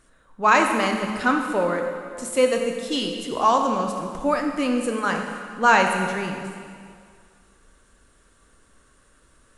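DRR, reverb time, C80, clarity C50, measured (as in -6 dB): 3.0 dB, 2.1 s, 6.0 dB, 4.5 dB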